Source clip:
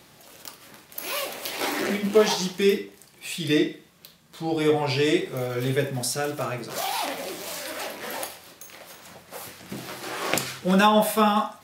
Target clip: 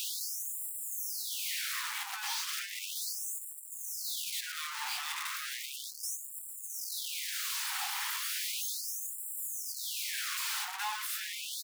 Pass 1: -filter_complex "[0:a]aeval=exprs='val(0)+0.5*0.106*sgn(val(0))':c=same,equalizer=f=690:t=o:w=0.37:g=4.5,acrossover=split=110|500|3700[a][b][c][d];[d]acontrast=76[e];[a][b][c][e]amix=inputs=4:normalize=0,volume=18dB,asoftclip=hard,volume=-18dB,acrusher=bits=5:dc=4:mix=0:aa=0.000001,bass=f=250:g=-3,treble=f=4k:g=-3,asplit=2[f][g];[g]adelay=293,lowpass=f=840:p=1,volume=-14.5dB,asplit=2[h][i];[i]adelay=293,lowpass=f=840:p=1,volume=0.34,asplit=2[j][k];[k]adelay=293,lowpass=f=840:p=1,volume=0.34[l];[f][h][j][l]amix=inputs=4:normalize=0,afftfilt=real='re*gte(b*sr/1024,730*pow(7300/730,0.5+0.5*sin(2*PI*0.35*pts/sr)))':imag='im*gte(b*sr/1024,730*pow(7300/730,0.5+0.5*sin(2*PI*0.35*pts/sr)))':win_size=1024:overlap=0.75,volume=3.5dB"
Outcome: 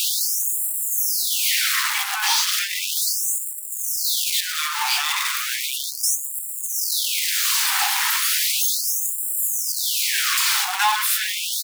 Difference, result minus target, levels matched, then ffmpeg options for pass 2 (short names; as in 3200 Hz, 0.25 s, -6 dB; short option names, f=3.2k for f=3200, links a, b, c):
overloaded stage: distortion -6 dB
-filter_complex "[0:a]aeval=exprs='val(0)+0.5*0.106*sgn(val(0))':c=same,equalizer=f=690:t=o:w=0.37:g=4.5,acrossover=split=110|500|3700[a][b][c][d];[d]acontrast=76[e];[a][b][c][e]amix=inputs=4:normalize=0,volume=30dB,asoftclip=hard,volume=-30dB,acrusher=bits=5:dc=4:mix=0:aa=0.000001,bass=f=250:g=-3,treble=f=4k:g=-3,asplit=2[f][g];[g]adelay=293,lowpass=f=840:p=1,volume=-14.5dB,asplit=2[h][i];[i]adelay=293,lowpass=f=840:p=1,volume=0.34,asplit=2[j][k];[k]adelay=293,lowpass=f=840:p=1,volume=0.34[l];[f][h][j][l]amix=inputs=4:normalize=0,afftfilt=real='re*gte(b*sr/1024,730*pow(7300/730,0.5+0.5*sin(2*PI*0.35*pts/sr)))':imag='im*gte(b*sr/1024,730*pow(7300/730,0.5+0.5*sin(2*PI*0.35*pts/sr)))':win_size=1024:overlap=0.75,volume=3.5dB"